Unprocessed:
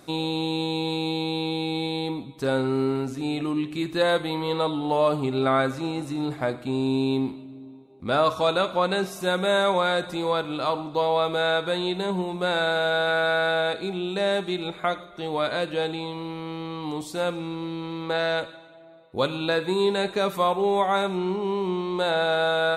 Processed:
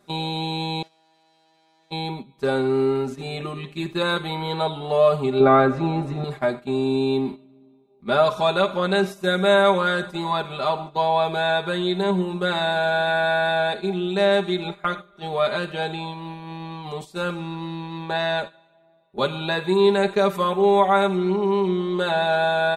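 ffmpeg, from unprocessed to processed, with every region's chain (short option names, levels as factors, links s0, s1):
-filter_complex "[0:a]asettb=1/sr,asplit=3[s0][s1][s2];[s0]atrim=end=0.824[s3];[s1]atrim=start=0.82:end=1.91,asetpts=PTS-STARTPTS,afade=t=in:d=0.004:c=qsin,afade=t=out:st=1.086:d=0.004:c=qsin,aeval=exprs='max(val(0),0)':c=same,aeval=exprs='(tanh(112*val(0)+0.35)-tanh(0.35))/112':c=same,highpass=240,lowpass=7100[s4];[s2]atrim=start=1.906[s5];[s3][s4]acrossfade=d=0.004:c1=hsin:c2=qsin[s6];[s6][s5]acrossfade=d=0.004:c1=qsin:c2=hsin,asettb=1/sr,asplit=3[s7][s8][s9];[s7]atrim=end=5.404[s10];[s8]atrim=start=5.4:end=6.24,asetpts=PTS-STARTPTS,afade=t=in:d=0.004:c=qsin,afade=t=out:st=0.836:d=0.004:c=qsin,lowpass=f=1100:p=1,acontrast=65[s11];[s9]atrim=start=6.236[s12];[s10][s11]acrossfade=d=0.004:c1=hsin:c2=qsin[s13];[s13][s12]acrossfade=d=0.004:c1=qsin:c2=hsin,agate=range=0.282:threshold=0.0251:ratio=16:detection=peak,highshelf=f=4900:g=-4.5,aecho=1:1:5:0.96"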